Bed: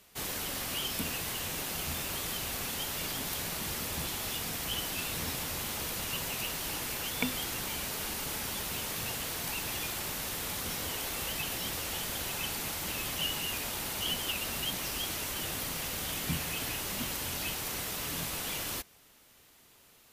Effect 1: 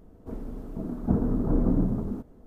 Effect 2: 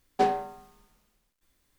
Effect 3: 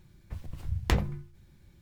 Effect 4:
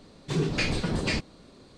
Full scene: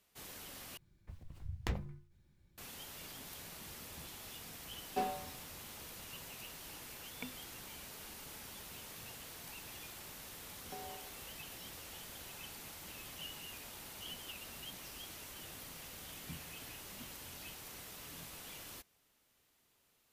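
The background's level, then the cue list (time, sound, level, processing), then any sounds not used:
bed −14 dB
0:00.77: overwrite with 3 −11.5 dB
0:04.77: mix in 2 −12.5 dB + double-tracking delay 31 ms −4.5 dB
0:10.53: mix in 2 −14.5 dB + downward compressor, threshold −30 dBFS
not used: 1, 4

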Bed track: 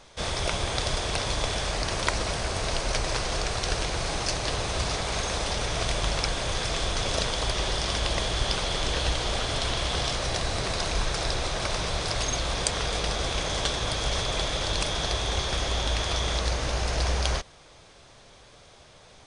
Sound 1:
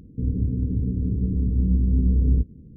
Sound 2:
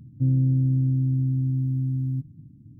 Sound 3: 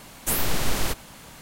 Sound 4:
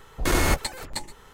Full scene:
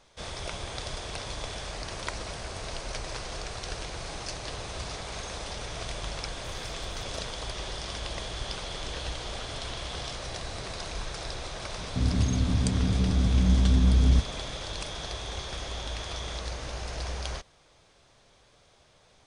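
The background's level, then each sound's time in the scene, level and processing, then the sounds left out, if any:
bed track −8.5 dB
0:06.19: mix in 4 −16.5 dB + downward compressor, threshold −31 dBFS
0:11.78: mix in 1 −1.5 dB
not used: 2, 3

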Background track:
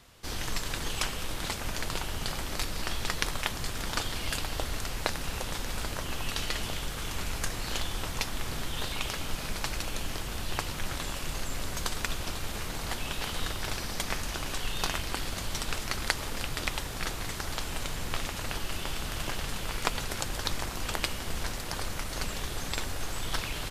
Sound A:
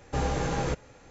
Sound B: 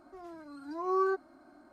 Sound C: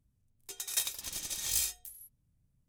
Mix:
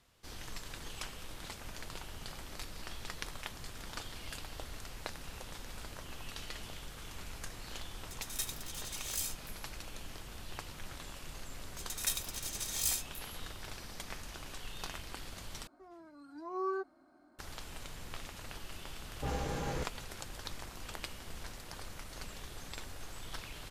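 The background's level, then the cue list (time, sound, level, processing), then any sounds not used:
background track −12 dB
0:07.62: mix in C −6.5 dB
0:11.30: mix in C −9 dB + automatic gain control gain up to 7 dB
0:15.67: overwrite with B −7 dB
0:19.09: mix in A −8.5 dB + all-pass dispersion highs, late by 62 ms, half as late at 2,800 Hz

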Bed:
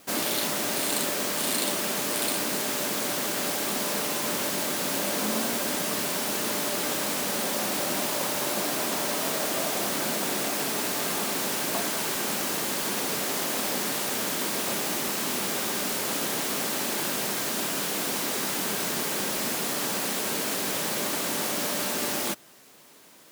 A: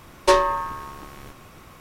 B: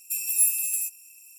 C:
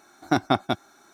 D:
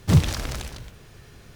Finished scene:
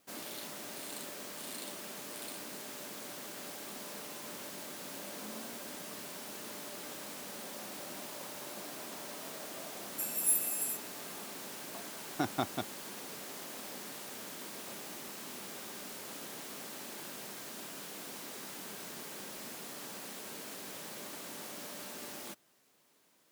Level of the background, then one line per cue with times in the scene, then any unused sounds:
bed −16.5 dB
0:09.88: mix in B −15 dB + high-shelf EQ 7,400 Hz +9 dB
0:11.88: mix in C −12 dB
not used: A, D

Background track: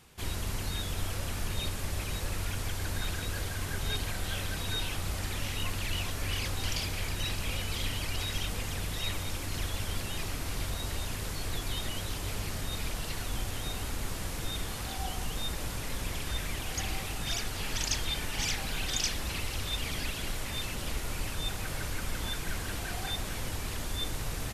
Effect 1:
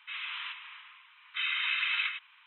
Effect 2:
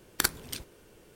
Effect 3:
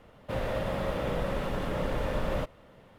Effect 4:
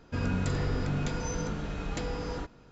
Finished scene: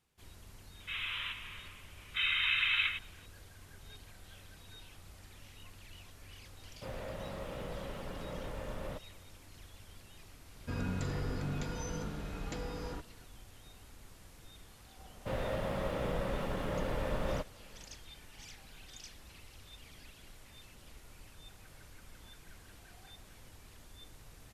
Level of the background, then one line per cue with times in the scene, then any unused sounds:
background track −20 dB
0:00.80: mix in 1 −4.5 dB + high-shelf EQ 2,100 Hz +7.5 dB
0:06.53: mix in 3 −11.5 dB
0:10.55: mix in 4 −6.5 dB
0:14.97: mix in 3 −4.5 dB
not used: 2

